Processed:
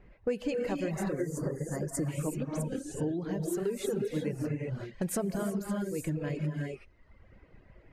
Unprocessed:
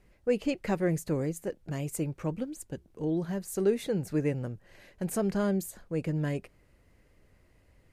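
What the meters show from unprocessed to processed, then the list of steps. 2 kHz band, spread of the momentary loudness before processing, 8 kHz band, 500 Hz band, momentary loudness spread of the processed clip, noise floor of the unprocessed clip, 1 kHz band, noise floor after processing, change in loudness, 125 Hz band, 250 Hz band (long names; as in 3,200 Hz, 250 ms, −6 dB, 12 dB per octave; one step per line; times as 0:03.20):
−1.5 dB, 9 LU, +1.0 dB, −2.0 dB, 3 LU, −64 dBFS, −1.5 dB, −60 dBFS, −2.0 dB, −1.0 dB, −1.5 dB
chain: reverb whose tail is shaped and stops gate 400 ms rising, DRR −1.5 dB
gain on a spectral selection 0:01.21–0:02.08, 2,100–4,400 Hz −21 dB
downward compressor 6 to 1, threshold −34 dBFS, peak gain reduction 14 dB
reverb reduction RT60 1.1 s
low-pass that shuts in the quiet parts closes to 2,100 Hz, open at −35 dBFS
level +6 dB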